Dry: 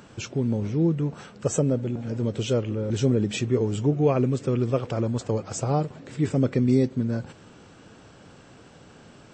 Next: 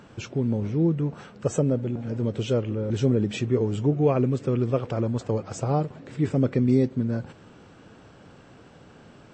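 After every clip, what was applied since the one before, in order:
high-shelf EQ 4,900 Hz −9.5 dB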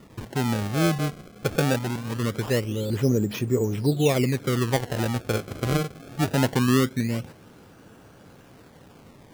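sample-and-hold swept by an LFO 27×, swing 160% 0.22 Hz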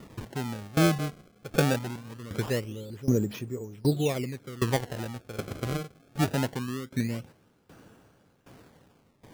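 speech leveller within 4 dB 2 s
tremolo with a ramp in dB decaying 1.3 Hz, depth 19 dB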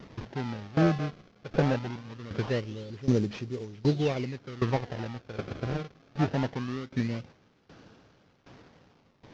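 variable-slope delta modulation 32 kbit/s

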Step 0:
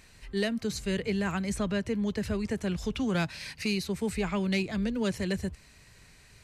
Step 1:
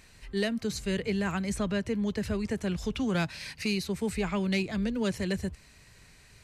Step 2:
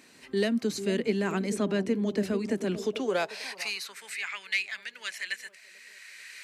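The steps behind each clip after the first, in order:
no processing that can be heard
camcorder AGC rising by 11 dB per second; bucket-brigade delay 443 ms, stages 2,048, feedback 54%, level −9.5 dB; high-pass filter sweep 270 Hz → 1,900 Hz, 0:02.73–0:04.12

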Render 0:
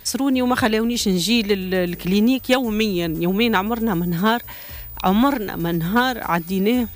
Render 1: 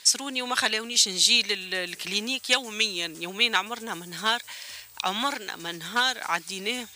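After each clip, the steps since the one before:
meter weighting curve ITU-R 468
level −7 dB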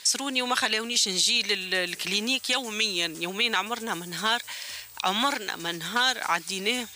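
brickwall limiter −15 dBFS, peak gain reduction 9.5 dB
level +3 dB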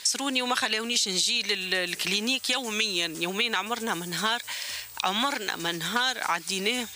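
downward compressor 3 to 1, threshold −26 dBFS, peak gain reduction 6 dB
level +3 dB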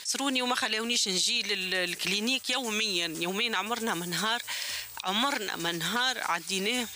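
brickwall limiter −16.5 dBFS, peak gain reduction 7.5 dB
level that may rise only so fast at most 260 dB per second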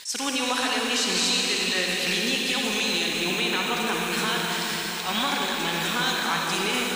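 loose part that buzzes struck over −43 dBFS, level −25 dBFS
convolution reverb RT60 5.1 s, pre-delay 47 ms, DRR −2.5 dB

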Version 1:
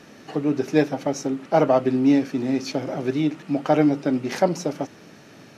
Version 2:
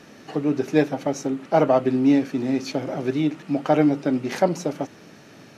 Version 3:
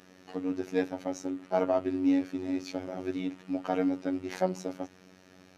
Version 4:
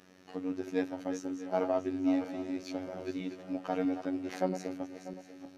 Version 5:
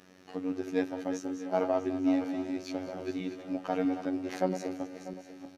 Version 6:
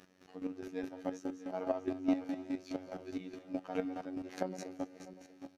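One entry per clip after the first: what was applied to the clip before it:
dynamic equaliser 5,300 Hz, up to −4 dB, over −52 dBFS, Q 4.2
phases set to zero 92.4 Hz; level −7.5 dB
feedback delay that plays each chunk backwards 321 ms, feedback 52%, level −9.5 dB; level −3.5 dB
single-tap delay 203 ms −14.5 dB; level +2 dB
square-wave tremolo 4.8 Hz, depth 65%, duty 25%; level −2 dB

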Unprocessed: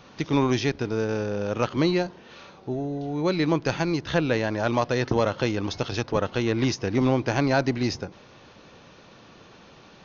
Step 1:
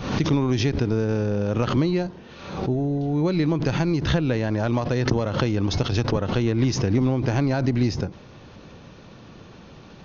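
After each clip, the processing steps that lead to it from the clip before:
downward compressor, threshold −24 dBFS, peak gain reduction 7.5 dB
low-shelf EQ 290 Hz +11.5 dB
background raised ahead of every attack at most 67 dB per second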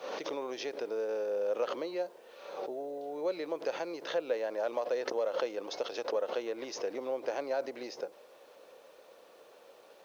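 four-pole ladder high-pass 460 Hz, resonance 60%
bit reduction 11 bits
level −1.5 dB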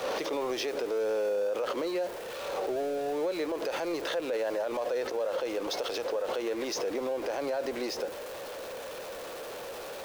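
converter with a step at zero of −41.5 dBFS
brickwall limiter −29.5 dBFS, peak gain reduction 10 dB
level +5.5 dB

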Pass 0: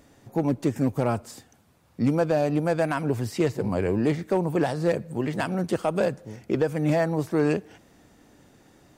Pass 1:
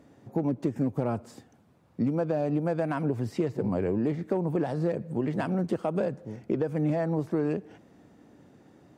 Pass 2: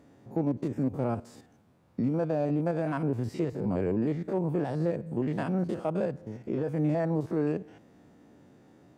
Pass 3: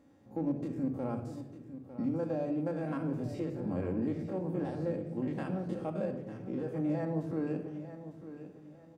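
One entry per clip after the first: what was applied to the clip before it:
Bessel high-pass filter 190 Hz, order 2; spectral tilt −3 dB per octave; downward compressor, threshold −21 dBFS, peak gain reduction 7.5 dB; level −2.5 dB
spectrum averaged block by block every 50 ms
repeating echo 902 ms, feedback 30%, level −12.5 dB; rectangular room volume 3,400 cubic metres, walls furnished, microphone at 2.2 metres; level −8 dB

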